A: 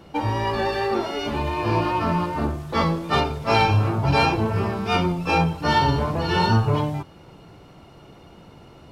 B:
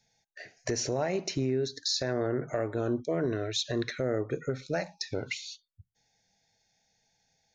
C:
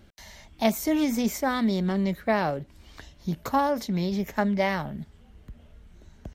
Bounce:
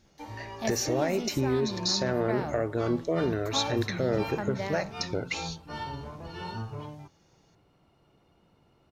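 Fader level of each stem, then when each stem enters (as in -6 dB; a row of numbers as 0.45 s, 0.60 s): -18.0 dB, +2.0 dB, -10.5 dB; 0.05 s, 0.00 s, 0.00 s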